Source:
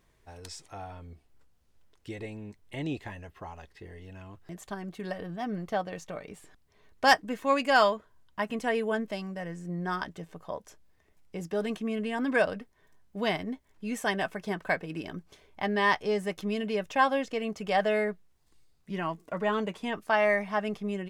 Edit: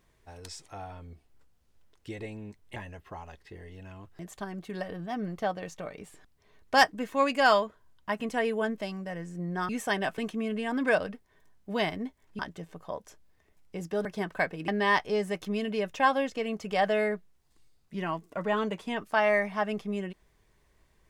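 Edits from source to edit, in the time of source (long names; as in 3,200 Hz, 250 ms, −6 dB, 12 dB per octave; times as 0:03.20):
0:02.76–0:03.06: remove
0:09.99–0:11.65: swap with 0:13.86–0:14.35
0:14.98–0:15.64: remove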